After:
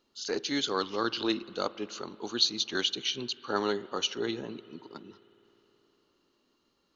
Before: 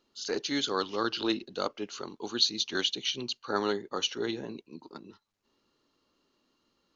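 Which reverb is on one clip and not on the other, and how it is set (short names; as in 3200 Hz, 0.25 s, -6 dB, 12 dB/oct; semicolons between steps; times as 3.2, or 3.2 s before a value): spring tank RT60 3.8 s, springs 52 ms, chirp 65 ms, DRR 18.5 dB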